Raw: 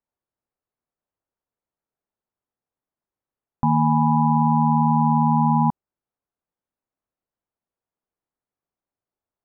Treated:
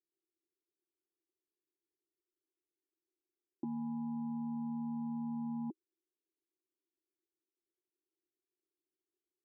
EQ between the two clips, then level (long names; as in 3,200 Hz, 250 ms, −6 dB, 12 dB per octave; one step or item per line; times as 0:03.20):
flat-topped band-pass 350 Hz, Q 4.5
+7.0 dB